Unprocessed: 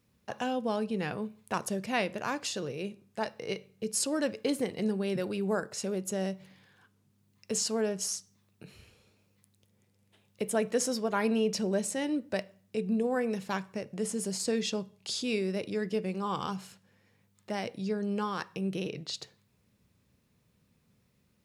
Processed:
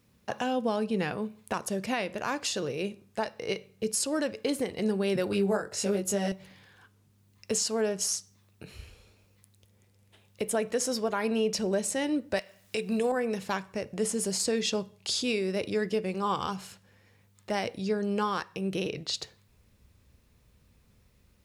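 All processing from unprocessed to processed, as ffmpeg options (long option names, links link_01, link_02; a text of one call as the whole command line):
ffmpeg -i in.wav -filter_complex "[0:a]asettb=1/sr,asplit=3[link_01][link_02][link_03];[link_01]atrim=end=5.304[link_04];[link_02]atrim=start=5.3:end=6.32,asetpts=PTS-STARTPTS,afade=type=in:duration=0.004:curve=qsin,afade=type=out:start_time=1.016:duration=0.004:curve=qsin,bandreject=frequency=1100:width=27,asplit=2[link_05][link_06];[link_06]adelay=20,volume=-2dB[link_07];[link_05][link_07]amix=inputs=2:normalize=0,atrim=end_sample=44982[link_08];[link_03]atrim=start=6.316[link_09];[link_04][link_08]acrossfade=duration=0.004:curve1=hsin:curve2=qsin[link_10];[link_10][link_09]acrossfade=duration=0.004:curve1=qsin:curve2=hsin,asettb=1/sr,asplit=3[link_11][link_12][link_13];[link_11]atrim=end=12.374[link_14];[link_12]atrim=start=12.37:end=13.12,asetpts=PTS-STARTPTS,afade=type=in:duration=0.004:curve=qsin,afade=type=out:start_time=0.746:duration=0.004:curve=qsin,tiltshelf=frequency=690:gain=-7,acontrast=53[link_15];[link_13]atrim=start=13.116[link_16];[link_14][link_15]acrossfade=duration=0.004:curve1=hsin:curve2=qsin[link_17];[link_17][link_16]acrossfade=duration=0.004:curve1=qsin:curve2=hsin,asubboost=boost=8:cutoff=53,alimiter=limit=-24dB:level=0:latency=1:release=343,volume=5.5dB" out.wav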